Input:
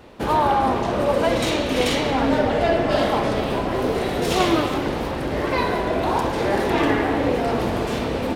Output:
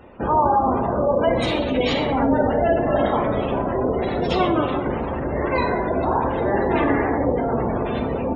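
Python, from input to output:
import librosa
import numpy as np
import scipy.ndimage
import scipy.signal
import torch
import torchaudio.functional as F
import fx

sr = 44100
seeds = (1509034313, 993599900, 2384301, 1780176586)

y = fx.spec_gate(x, sr, threshold_db=-20, keep='strong')
y = fx.rev_gated(y, sr, seeds[0], gate_ms=170, shape='falling', drr_db=7.5)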